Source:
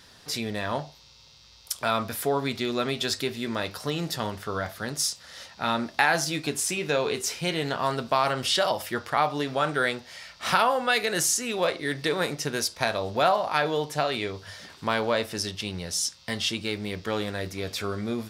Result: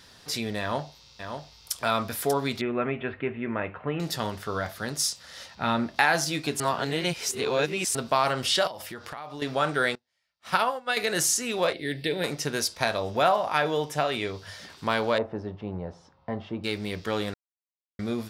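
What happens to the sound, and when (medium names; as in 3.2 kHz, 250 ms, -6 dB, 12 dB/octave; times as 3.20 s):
0.60–1.74 s: echo throw 590 ms, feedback 10%, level -7 dB
2.61–4.00 s: steep low-pass 2.6 kHz 48 dB/octave
5.55–5.96 s: tone controls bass +5 dB, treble -7 dB
6.60–7.95 s: reverse
8.67–9.42 s: compression, threshold -35 dBFS
9.95–10.97 s: upward expansion 2.5:1, over -42 dBFS
11.73–12.24 s: static phaser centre 2.8 kHz, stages 4
13.00–14.25 s: band-stop 4.3 kHz, Q 5.7
15.18–16.64 s: resonant low-pass 850 Hz, resonance Q 1.7
17.34–17.99 s: mute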